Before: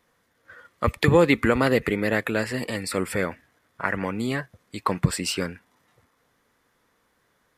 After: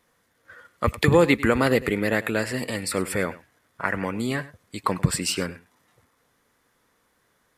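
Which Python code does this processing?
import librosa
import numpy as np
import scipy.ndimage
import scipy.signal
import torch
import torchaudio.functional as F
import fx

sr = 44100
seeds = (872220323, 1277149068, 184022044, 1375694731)

y = fx.peak_eq(x, sr, hz=10000.0, db=4.0, octaves=1.3)
y = y + 10.0 ** (-18.0 / 20.0) * np.pad(y, (int(99 * sr / 1000.0), 0))[:len(y)]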